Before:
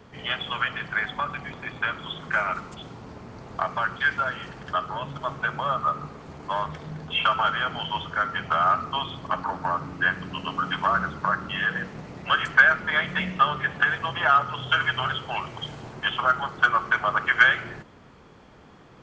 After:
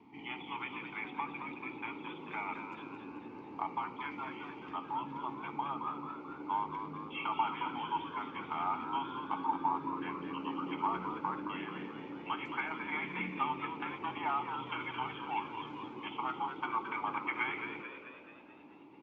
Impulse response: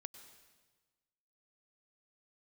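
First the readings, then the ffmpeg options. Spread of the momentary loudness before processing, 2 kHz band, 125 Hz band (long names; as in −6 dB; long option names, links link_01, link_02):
15 LU, −19.0 dB, −15.5 dB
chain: -filter_complex "[0:a]acrossover=split=2800[link_01][link_02];[link_02]acompressor=threshold=-39dB:ratio=4:attack=1:release=60[link_03];[link_01][link_03]amix=inputs=2:normalize=0,asplit=3[link_04][link_05][link_06];[link_04]bandpass=frequency=300:width_type=q:width=8,volume=0dB[link_07];[link_05]bandpass=frequency=870:width_type=q:width=8,volume=-6dB[link_08];[link_06]bandpass=frequency=2240:width_type=q:width=8,volume=-9dB[link_09];[link_07][link_08][link_09]amix=inputs=3:normalize=0,asplit=8[link_10][link_11][link_12][link_13][link_14][link_15][link_16][link_17];[link_11]adelay=219,afreqshift=78,volume=-8dB[link_18];[link_12]adelay=438,afreqshift=156,volume=-13.2dB[link_19];[link_13]adelay=657,afreqshift=234,volume=-18.4dB[link_20];[link_14]adelay=876,afreqshift=312,volume=-23.6dB[link_21];[link_15]adelay=1095,afreqshift=390,volume=-28.8dB[link_22];[link_16]adelay=1314,afreqshift=468,volume=-34dB[link_23];[link_17]adelay=1533,afreqshift=546,volume=-39.2dB[link_24];[link_10][link_18][link_19][link_20][link_21][link_22][link_23][link_24]amix=inputs=8:normalize=0,volume=5dB"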